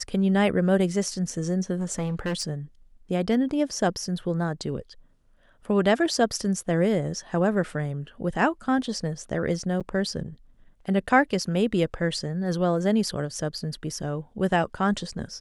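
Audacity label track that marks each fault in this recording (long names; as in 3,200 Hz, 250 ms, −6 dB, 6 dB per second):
1.790000	2.430000	clipping −23.5 dBFS
9.800000	9.810000	drop-out 7.1 ms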